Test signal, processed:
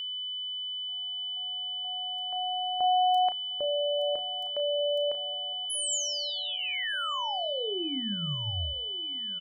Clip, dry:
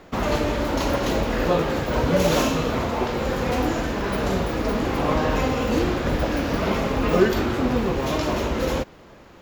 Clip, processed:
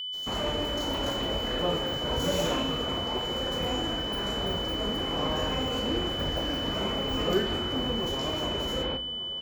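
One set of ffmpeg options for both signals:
ffmpeg -i in.wav -filter_complex "[0:a]bandreject=frequency=60:width_type=h:width=6,bandreject=frequency=120:width_type=h:width=6,bandreject=frequency=180:width_type=h:width=6,bandreject=frequency=240:width_type=h:width=6,bandreject=frequency=300:width_type=h:width=6,adynamicequalizer=threshold=0.002:dfrequency=7200:dqfactor=5.7:tfrequency=7200:tqfactor=5.7:attack=5:release=100:ratio=0.375:range=2.5:mode=boostabove:tftype=bell,asplit=2[link_01][link_02];[link_02]adelay=34,volume=-9.5dB[link_03];[link_01][link_03]amix=inputs=2:normalize=0,acrossover=split=3700[link_04][link_05];[link_04]adelay=140[link_06];[link_06][link_05]amix=inputs=2:normalize=0,aeval=exprs='val(0)+0.0631*sin(2*PI*3000*n/s)':channel_layout=same,asplit=2[link_07][link_08];[link_08]adelay=1184,lowpass=frequency=1700:poles=1,volume=-17dB,asplit=2[link_09][link_10];[link_10]adelay=1184,lowpass=frequency=1700:poles=1,volume=0.55,asplit=2[link_11][link_12];[link_12]adelay=1184,lowpass=frequency=1700:poles=1,volume=0.55,asplit=2[link_13][link_14];[link_14]adelay=1184,lowpass=frequency=1700:poles=1,volume=0.55,asplit=2[link_15][link_16];[link_16]adelay=1184,lowpass=frequency=1700:poles=1,volume=0.55[link_17];[link_09][link_11][link_13][link_15][link_17]amix=inputs=5:normalize=0[link_18];[link_07][link_18]amix=inputs=2:normalize=0,volume=-8.5dB" out.wav

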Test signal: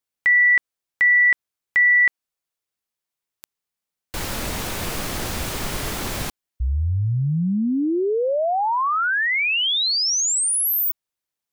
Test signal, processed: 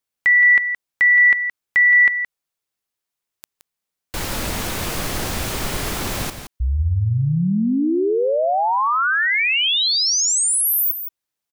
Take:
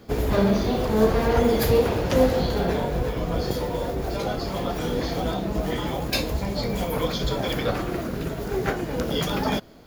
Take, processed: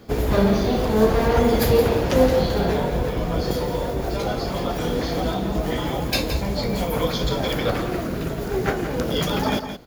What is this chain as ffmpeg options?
ffmpeg -i in.wav -af "aecho=1:1:170:0.335,volume=2dB" out.wav

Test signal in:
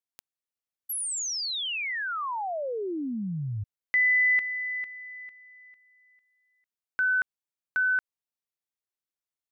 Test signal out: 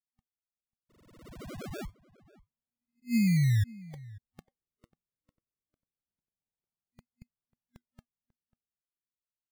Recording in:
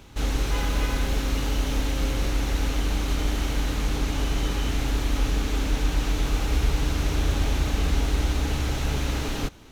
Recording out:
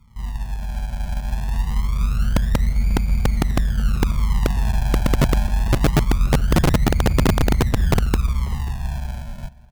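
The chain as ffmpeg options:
ffmpeg -i in.wav -filter_complex "[0:a]acrossover=split=8900[link_01][link_02];[link_02]acompressor=threshold=-55dB:ratio=4:attack=1:release=60[link_03];[link_01][link_03]amix=inputs=2:normalize=0,afftfilt=real='re*(1-between(b*sr/4096,240,2100))':imag='im*(1-between(b*sr/4096,240,2100))':win_size=4096:overlap=0.75,firequalizer=gain_entry='entry(360,0);entry(1500,-12);entry(4100,-15);entry(7900,-25)':delay=0.05:min_phase=1,dynaudnorm=framelen=150:gausssize=21:maxgain=9dB,acrusher=samples=37:mix=1:aa=0.000001:lfo=1:lforange=37:lforate=0.24,aeval=exprs='(mod(2.66*val(0)+1,2)-1)/2.66':channel_layout=same,asplit=2[link_04][link_05];[link_05]adelay=542.3,volume=-21dB,highshelf=frequency=4000:gain=-12.2[link_06];[link_04][link_06]amix=inputs=2:normalize=0,volume=-1.5dB" out.wav

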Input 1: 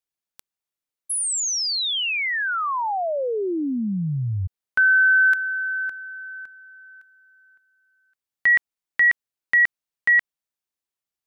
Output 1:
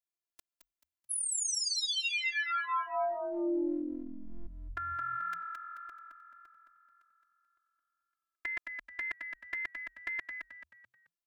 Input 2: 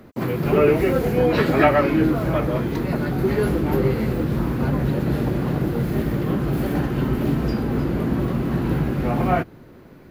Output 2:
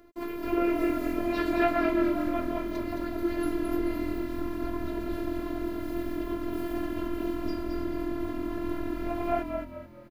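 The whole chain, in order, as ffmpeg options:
ffmpeg -i in.wav -filter_complex "[0:a]afftfilt=real='hypot(re,im)*cos(PI*b)':imag='0':win_size=512:overlap=0.75,asplit=5[link_01][link_02][link_03][link_04][link_05];[link_02]adelay=217,afreqshift=-43,volume=-5.5dB[link_06];[link_03]adelay=434,afreqshift=-86,volume=-14.4dB[link_07];[link_04]adelay=651,afreqshift=-129,volume=-23.2dB[link_08];[link_05]adelay=868,afreqshift=-172,volume=-32.1dB[link_09];[link_01][link_06][link_07][link_08][link_09]amix=inputs=5:normalize=0,volume=-6dB" out.wav

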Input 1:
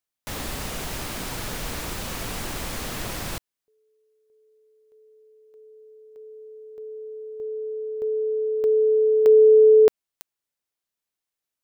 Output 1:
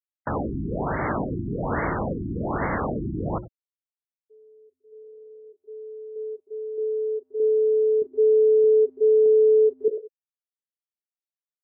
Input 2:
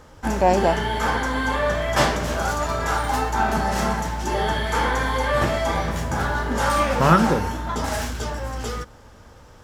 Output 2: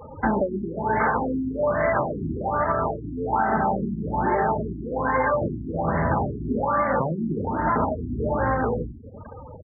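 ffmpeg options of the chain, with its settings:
ffmpeg -i in.wav -af "asuperstop=centerf=3200:order=4:qfactor=1.4,lowshelf=frequency=77:gain=-8,bandreject=frequency=60:width_type=h:width=6,bandreject=frequency=120:width_type=h:width=6,bandreject=frequency=180:width_type=h:width=6,bandreject=frequency=240:width_type=h:width=6,bandreject=frequency=300:width_type=h:width=6,bandreject=frequency=360:width_type=h:width=6,bandreject=frequency=420:width_type=h:width=6,bandreject=frequency=480:width_type=h:width=6,bandreject=frequency=540:width_type=h:width=6,aecho=1:1:96|192:0.158|0.0254,acompressor=threshold=-26dB:ratio=16:attack=0.51:release=352:knee=1:detection=rms,highpass=49,acontrast=40,afftfilt=real='re*gte(hypot(re,im),0.0178)':imag='im*gte(hypot(re,im),0.0178)':win_size=1024:overlap=0.75,afftfilt=real='re*lt(b*sr/1024,370*pow(2300/370,0.5+0.5*sin(2*PI*1.2*pts/sr)))':imag='im*lt(b*sr/1024,370*pow(2300/370,0.5+0.5*sin(2*PI*1.2*pts/sr)))':win_size=1024:overlap=0.75,volume=6.5dB" out.wav

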